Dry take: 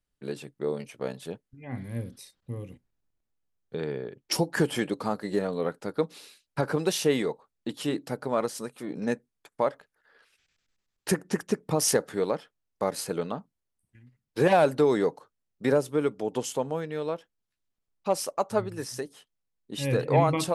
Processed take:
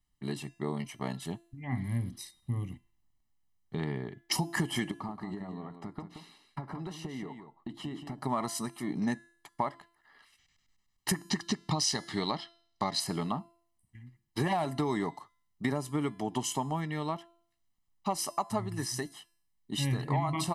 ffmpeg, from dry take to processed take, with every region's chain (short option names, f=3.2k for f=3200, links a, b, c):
-filter_complex "[0:a]asettb=1/sr,asplit=3[a][b][c];[a]atrim=end=4.914[d];[b]atrim=start=4.91:end=8.18,asetpts=PTS-STARTPTS,afade=t=in:d=0.004:c=qsin,afade=t=out:st=3.266:d=0.004:c=qsin,acompressor=threshold=-35dB:ratio=10:attack=3.2:release=140:knee=1:detection=peak,lowpass=f=1.3k:p=1,aecho=1:1:176:0.376,atrim=end_sample=144207[e];[c]atrim=start=8.176[f];[d][e]acrossfade=d=0.004:c1=hsin:c2=qsin[g];[g][f]acrossfade=d=0.004:c1=qsin:c2=hsin,asettb=1/sr,asplit=3[h][i][j];[h]atrim=end=11.164[k];[i]atrim=start=11.16:end=13,asetpts=PTS-STARTPTS,afade=t=in:d=0.004:c=qsin,afade=t=out:st=1.836:d=0.004:c=qsin,lowpass=6.7k,equalizer=f=4.2k:w=1.4:g=13[l];[j]atrim=start=12.996[m];[k][l]acrossfade=d=0.004:c1=hsin:c2=qsin[n];[n][m]acrossfade=d=0.004:c1=qsin:c2=hsin,aecho=1:1:1:0.93,bandreject=f=339.7:t=h:w=4,bandreject=f=679.4:t=h:w=4,bandreject=f=1.0191k:t=h:w=4,bandreject=f=1.3588k:t=h:w=4,bandreject=f=1.6985k:t=h:w=4,bandreject=f=2.0382k:t=h:w=4,bandreject=f=2.3779k:t=h:w=4,bandreject=f=2.7176k:t=h:w=4,bandreject=f=3.0573k:t=h:w=4,bandreject=f=3.397k:t=h:w=4,bandreject=f=3.7367k:t=h:w=4,bandreject=f=4.0764k:t=h:w=4,bandreject=f=4.4161k:t=h:w=4,bandreject=f=4.7558k:t=h:w=4,bandreject=f=5.0955k:t=h:w=4,bandreject=f=5.4352k:t=h:w=4,bandreject=f=5.7749k:t=h:w=4,bandreject=f=6.1146k:t=h:w=4,bandreject=f=6.4543k:t=h:w=4,bandreject=f=6.794k:t=h:w=4,bandreject=f=7.1337k:t=h:w=4,bandreject=f=7.4734k:t=h:w=4,bandreject=f=7.8131k:t=h:w=4,bandreject=f=8.1528k:t=h:w=4,bandreject=f=8.4925k:t=h:w=4,bandreject=f=8.8322k:t=h:w=4,bandreject=f=9.1719k:t=h:w=4,bandreject=f=9.5116k:t=h:w=4,bandreject=f=9.8513k:t=h:w=4,bandreject=f=10.191k:t=h:w=4,bandreject=f=10.5307k:t=h:w=4,bandreject=f=10.8704k:t=h:w=4,bandreject=f=11.2101k:t=h:w=4,bandreject=f=11.5498k:t=h:w=4,bandreject=f=11.8895k:t=h:w=4,bandreject=f=12.2292k:t=h:w=4,bandreject=f=12.5689k:t=h:w=4,bandreject=f=12.9086k:t=h:w=4,bandreject=f=13.2483k:t=h:w=4,acompressor=threshold=-27dB:ratio=6"